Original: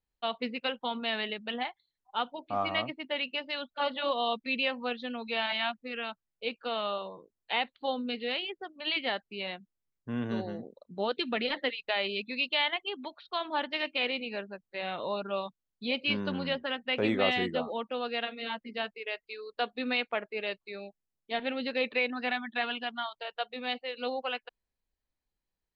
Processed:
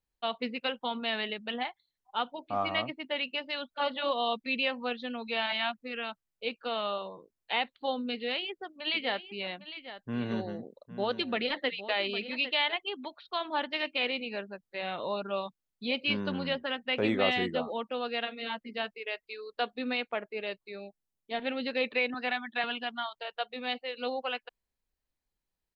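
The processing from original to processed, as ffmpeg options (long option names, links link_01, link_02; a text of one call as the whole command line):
ffmpeg -i in.wav -filter_complex "[0:a]asplit=3[link_01][link_02][link_03];[link_01]afade=type=out:start_time=8.93:duration=0.02[link_04];[link_02]aecho=1:1:807:0.237,afade=type=in:start_time=8.93:duration=0.02,afade=type=out:start_time=12.74:duration=0.02[link_05];[link_03]afade=type=in:start_time=12.74:duration=0.02[link_06];[link_04][link_05][link_06]amix=inputs=3:normalize=0,asettb=1/sr,asplit=3[link_07][link_08][link_09];[link_07]atrim=end=19.744[link_10];[link_08]atrim=start=19.74:end=21.42,asetpts=PTS-STARTPTS,afade=type=in:duration=0.004:curve=qsin,afade=type=out:start_time=1.676:duration=0.004:curve=qsin,equalizer=frequency=2500:width=0.37:gain=-3[link_11];[link_09]atrim=start=21.416[link_12];[link_10][link_11]acrossfade=duration=0.004:curve1=hsin:curve2=qsin[link_13];[link_13][link_12]acrossfade=duration=0.004:curve1=qsin:curve2=hsin,asettb=1/sr,asplit=3[link_14][link_15][link_16];[link_14]atrim=end=22.144[link_17];[link_15]atrim=start=22.14:end=22.64,asetpts=PTS-STARTPTS,afade=type=in:duration=0.004:curve=qsin,afade=type=out:start_time=0.496:duration=0.004:curve=qsin,highpass=250[link_18];[link_16]atrim=start=22.636[link_19];[link_17][link_18]acrossfade=duration=0.004:curve1=hsin:curve2=qsin[link_20];[link_20][link_19]acrossfade=duration=0.004:curve1=qsin:curve2=hsin" out.wav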